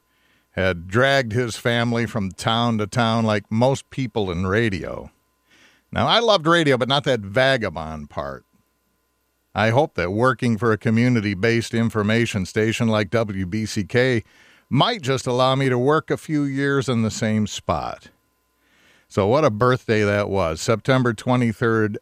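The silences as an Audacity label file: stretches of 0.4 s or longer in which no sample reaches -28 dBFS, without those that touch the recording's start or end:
5.030000	5.930000	silence
8.370000	9.560000	silence
14.200000	14.710000	silence
17.950000	19.160000	silence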